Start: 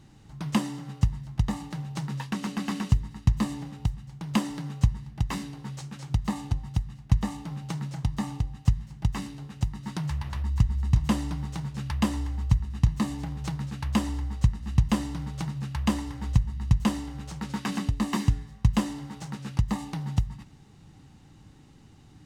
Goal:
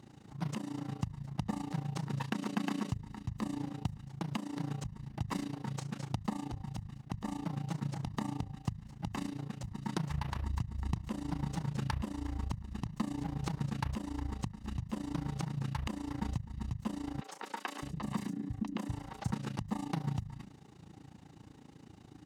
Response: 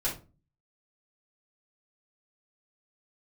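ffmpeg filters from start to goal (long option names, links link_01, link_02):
-filter_complex "[0:a]highpass=78,equalizer=frequency=440:width=0.37:gain=6,bandreject=frequency=50:width_type=h:width=6,bandreject=frequency=100:width_type=h:width=6,bandreject=frequency=150:width_type=h:width=6,bandreject=frequency=200:width_type=h:width=6,acompressor=threshold=-25dB:ratio=4,alimiter=limit=-19.5dB:level=0:latency=1:release=312,tremolo=f=28:d=0.857,asettb=1/sr,asplit=3[link_01][link_02][link_03];[link_01]atrim=end=17.214[link_04];[link_02]atrim=start=17.21:end=19.32,asetpts=PTS-STARTPTS,afade=type=in:duration=0.004:curve=qsin,afade=type=out:start_time=2.106:duration=0.004:curve=qsin,acrossover=split=370|4900[link_05][link_06][link_07];[link_07]adelay=30[link_08];[link_05]adelay=610[link_09];[link_09][link_06][link_08]amix=inputs=3:normalize=0,atrim=end_sample=93051[link_10];[link_03]atrim=start=19.316[link_11];[link_04][link_10]acrossfade=duration=0.004:curve1=hsin:curve2=qsin[link_12];[link_12][link_11]acrossfade=duration=0.004:curve1=qsin:curve2=hsin"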